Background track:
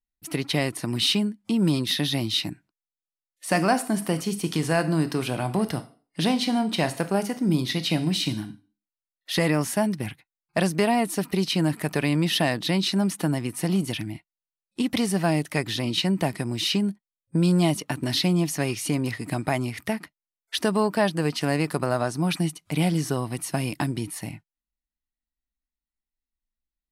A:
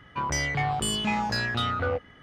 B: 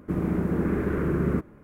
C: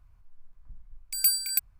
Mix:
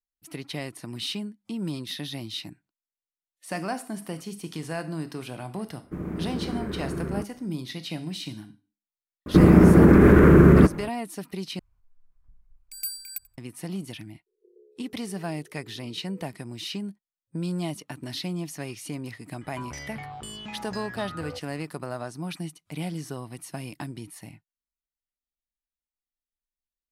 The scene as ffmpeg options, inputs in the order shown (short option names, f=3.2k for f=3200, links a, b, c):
-filter_complex "[2:a]asplit=2[a][b];[1:a]asplit=2[c][d];[0:a]volume=-9.5dB[e];[b]alimiter=level_in=18.5dB:limit=-1dB:release=50:level=0:latency=1[f];[3:a]aecho=1:1:88|176:0.075|0.012[g];[c]asuperpass=centerf=410:order=8:qfactor=3.7[h];[d]acompressor=threshold=-36dB:ratio=4:attack=8.9:release=431:knee=1:detection=peak[i];[e]asplit=2[j][k];[j]atrim=end=11.594[l];[g]atrim=end=1.79,asetpts=PTS-STARTPTS,volume=-9.5dB[m];[k]atrim=start=13.376[n];[a]atrim=end=1.63,asetpts=PTS-STARTPTS,volume=-6.5dB,afade=t=in:d=0.004:c=hsin,afade=t=out:st=1.626:d=0.004:c=hsin,adelay=5830[o];[f]atrim=end=1.63,asetpts=PTS-STARTPTS,volume=-4dB,afade=t=in:d=0.004:c=hsin,afade=t=out:st=1.626:d=0.004:c=hsin,adelay=9260[p];[h]atrim=end=2.22,asetpts=PTS-STARTPTS,volume=-9.5dB,afade=t=in:d=0.004:c=hsin,afade=t=out:st=2.216:d=0.004:c=hsin,adelay=14260[q];[i]atrim=end=2.22,asetpts=PTS-STARTPTS,volume=-1.5dB,afade=t=in:d=0.004:c=hsin,afade=t=out:st=2.216:d=0.004:c=hsin,adelay=19410[r];[l][m]acrossfade=d=0.004:c1=hsin:c2=hsin[s];[s][n]acrossfade=d=0.004:c1=hsin:c2=hsin[t];[t][o][p][q][r]amix=inputs=5:normalize=0"